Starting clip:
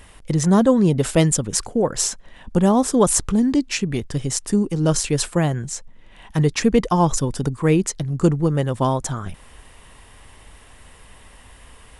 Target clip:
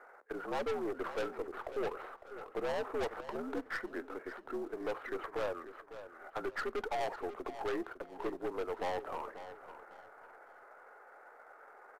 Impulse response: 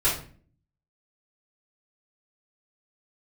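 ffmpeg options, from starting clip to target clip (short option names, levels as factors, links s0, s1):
-filter_complex "[0:a]equalizer=f=1100:w=0.43:g=-13,highpass=f=590:t=q:w=0.5412,highpass=f=590:t=q:w=1.307,lowpass=f=2100:t=q:w=0.5176,lowpass=f=2100:t=q:w=0.7071,lowpass=f=2100:t=q:w=1.932,afreqshift=110,aeval=exprs='(tanh(126*val(0)+0.25)-tanh(0.25))/126':c=same,asplit=2[s0][s1];[s1]acrusher=bits=3:mode=log:mix=0:aa=0.000001,volume=0.335[s2];[s0][s2]amix=inputs=2:normalize=0,aecho=1:1:546|1092|1638:0.237|0.0711|0.0213,asplit=2[s3][s4];[1:a]atrim=start_sample=2205,asetrate=48510,aresample=44100[s5];[s4][s5]afir=irnorm=-1:irlink=0,volume=0.0299[s6];[s3][s6]amix=inputs=2:normalize=0,asetrate=31183,aresample=44100,atempo=1.41421,volume=2.11"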